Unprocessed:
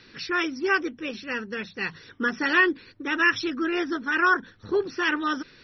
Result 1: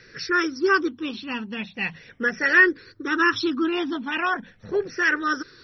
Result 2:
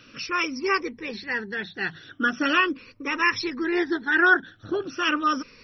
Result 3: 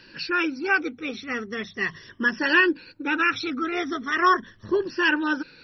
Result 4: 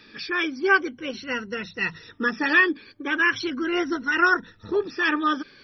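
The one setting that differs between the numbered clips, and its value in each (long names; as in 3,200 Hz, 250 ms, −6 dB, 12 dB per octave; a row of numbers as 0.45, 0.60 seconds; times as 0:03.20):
rippled gain that drifts along the octave scale, ripples per octave: 0.54, 0.88, 1.3, 2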